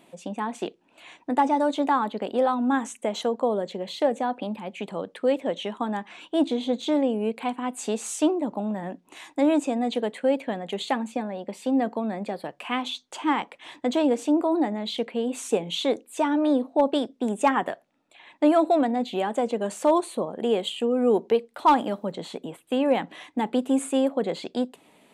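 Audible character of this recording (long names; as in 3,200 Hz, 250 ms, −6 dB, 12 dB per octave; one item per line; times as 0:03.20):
background noise floor −62 dBFS
spectral slope −3.5 dB per octave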